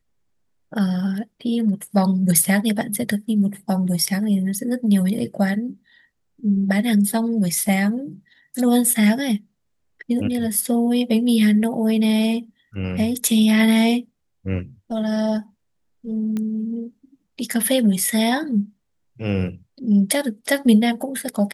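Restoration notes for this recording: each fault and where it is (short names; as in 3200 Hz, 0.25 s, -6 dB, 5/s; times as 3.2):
16.37 pop -15 dBFS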